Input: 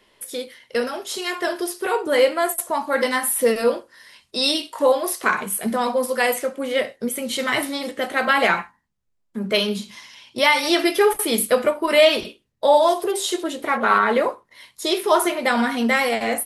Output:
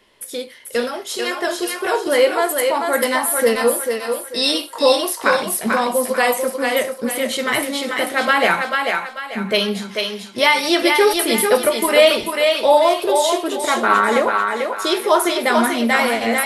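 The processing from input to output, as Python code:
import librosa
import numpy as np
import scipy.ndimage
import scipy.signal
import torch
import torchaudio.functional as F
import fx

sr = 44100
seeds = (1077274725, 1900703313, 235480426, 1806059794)

y = fx.echo_thinned(x, sr, ms=441, feedback_pct=37, hz=380.0, wet_db=-3.5)
y = y * 10.0 ** (2.0 / 20.0)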